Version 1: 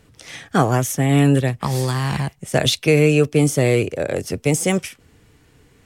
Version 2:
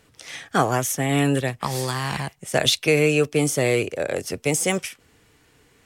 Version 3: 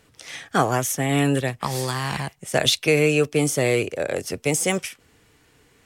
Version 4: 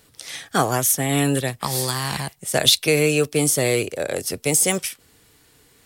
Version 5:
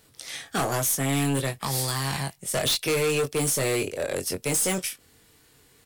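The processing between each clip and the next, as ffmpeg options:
ffmpeg -i in.wav -af "lowshelf=frequency=320:gain=-9.5" out.wav
ffmpeg -i in.wav -af anull out.wav
ffmpeg -i in.wav -af "aexciter=amount=2.1:drive=4.8:freq=3600" out.wav
ffmpeg -i in.wav -filter_complex "[0:a]aeval=exprs='0.891*(cos(1*acos(clip(val(0)/0.891,-1,1)))-cos(1*PI/2))+0.0562*(cos(4*acos(clip(val(0)/0.891,-1,1)))-cos(4*PI/2))':channel_layout=same,asplit=2[link_01][link_02];[link_02]adelay=22,volume=-7dB[link_03];[link_01][link_03]amix=inputs=2:normalize=0,volume=17.5dB,asoftclip=hard,volume=-17.5dB,volume=-3.5dB" out.wav

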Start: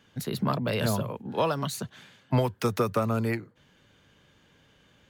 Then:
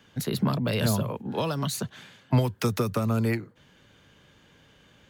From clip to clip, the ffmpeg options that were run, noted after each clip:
ffmpeg -i in.wav -filter_complex "[0:a]acrossover=split=300|3000[link_01][link_02][link_03];[link_02]acompressor=threshold=-32dB:ratio=6[link_04];[link_01][link_04][link_03]amix=inputs=3:normalize=0,volume=3.5dB" out.wav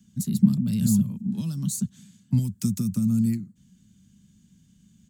ffmpeg -i in.wav -af "firequalizer=gain_entry='entry(140,0);entry(200,12);entry(280,-7);entry(470,-27);entry(7600,8);entry(11000,0)':delay=0.05:min_phase=1" out.wav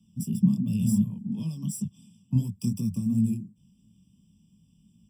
ffmpeg -i in.wav -af "flanger=delay=17.5:depth=7.2:speed=2.8,afftfilt=real='re*eq(mod(floor(b*sr/1024/1200),2),0)':imag='im*eq(mod(floor(b*sr/1024/1200),2),0)':win_size=1024:overlap=0.75" out.wav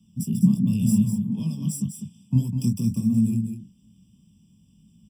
ffmpeg -i in.wav -af "aecho=1:1:201:0.422,volume=3.5dB" out.wav

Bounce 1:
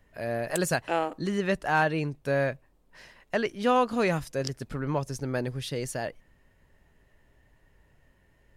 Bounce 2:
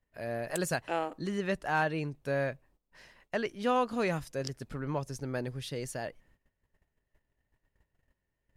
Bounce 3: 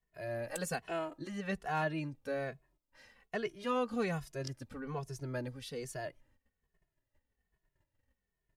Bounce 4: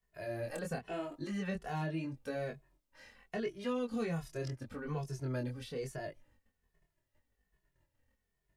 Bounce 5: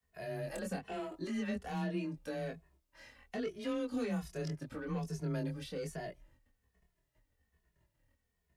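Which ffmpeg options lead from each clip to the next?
ffmpeg -i in.wav -af "agate=range=-15dB:threshold=-58dB:ratio=16:detection=peak,volume=-5dB" out.wav
ffmpeg -i in.wav -filter_complex "[0:a]asplit=2[link_01][link_02];[link_02]adelay=2.3,afreqshift=-1.2[link_03];[link_01][link_03]amix=inputs=2:normalize=1,volume=-1.5dB" out.wav
ffmpeg -i in.wav -filter_complex "[0:a]flanger=delay=20:depth=4.9:speed=0.81,acrossover=split=530|2600[link_01][link_02][link_03];[link_01]acompressor=threshold=-39dB:ratio=4[link_04];[link_02]acompressor=threshold=-51dB:ratio=4[link_05];[link_03]acompressor=threshold=-59dB:ratio=4[link_06];[link_04][link_05][link_06]amix=inputs=3:normalize=0,volume=5.5dB" out.wav
ffmpeg -i in.wav -filter_complex "[0:a]afreqshift=24,acrossover=split=390|3000[link_01][link_02][link_03];[link_02]asoftclip=type=tanh:threshold=-40dB[link_04];[link_01][link_04][link_03]amix=inputs=3:normalize=0,volume=1dB" out.wav

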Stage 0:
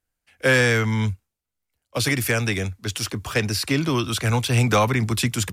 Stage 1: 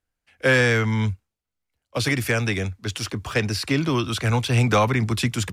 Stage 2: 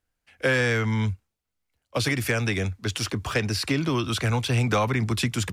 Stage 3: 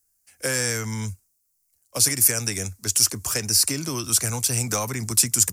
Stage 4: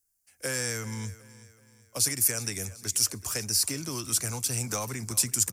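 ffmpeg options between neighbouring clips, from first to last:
ffmpeg -i in.wav -af "highshelf=frequency=8300:gain=-10.5" out.wav
ffmpeg -i in.wav -af "acompressor=threshold=-26dB:ratio=2,volume=2dB" out.wav
ffmpeg -i in.wav -af "aexciter=amount=15.4:drive=3.9:freq=5200,volume=-5dB" out.wav
ffmpeg -i in.wav -af "aecho=1:1:377|754|1131|1508:0.126|0.0541|0.0233|0.01,volume=-6.5dB" out.wav

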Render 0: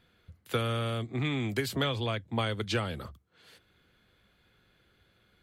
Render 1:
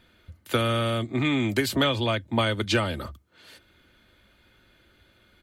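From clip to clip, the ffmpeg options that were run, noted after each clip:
ffmpeg -i in.wav -af "aecho=1:1:3.3:0.41,volume=6.5dB" out.wav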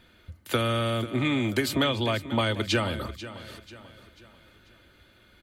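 ffmpeg -i in.wav -filter_complex "[0:a]asplit=2[link_01][link_02];[link_02]acompressor=threshold=-31dB:ratio=6,volume=0dB[link_03];[link_01][link_03]amix=inputs=2:normalize=0,aecho=1:1:490|980|1470|1960:0.188|0.081|0.0348|0.015,volume=-4dB" out.wav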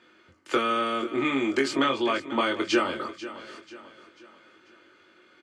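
ffmpeg -i in.wav -filter_complex "[0:a]highpass=320,equalizer=frequency=340:width_type=q:width=4:gain=8,equalizer=frequency=650:width_type=q:width=4:gain=-4,equalizer=frequency=1200:width_type=q:width=4:gain=5,equalizer=frequency=3800:width_type=q:width=4:gain=-8,lowpass=frequency=7400:width=0.5412,lowpass=frequency=7400:width=1.3066,asplit=2[link_01][link_02];[link_02]adelay=22,volume=-4dB[link_03];[link_01][link_03]amix=inputs=2:normalize=0" out.wav

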